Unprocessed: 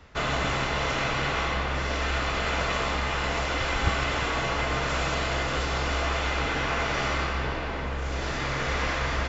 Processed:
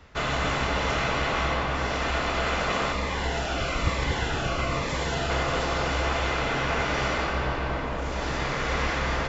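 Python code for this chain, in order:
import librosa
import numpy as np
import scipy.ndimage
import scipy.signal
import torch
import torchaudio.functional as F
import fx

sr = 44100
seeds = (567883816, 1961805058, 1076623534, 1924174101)

y = fx.echo_bbd(x, sr, ms=234, stages=2048, feedback_pct=78, wet_db=-5.0)
y = fx.notch_cascade(y, sr, direction='falling', hz=1.1, at=(2.92, 5.3))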